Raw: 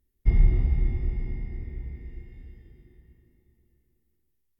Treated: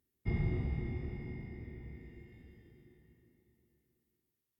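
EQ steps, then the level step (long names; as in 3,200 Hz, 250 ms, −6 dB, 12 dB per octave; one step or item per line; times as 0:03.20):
high-pass filter 120 Hz 12 dB per octave
−2.0 dB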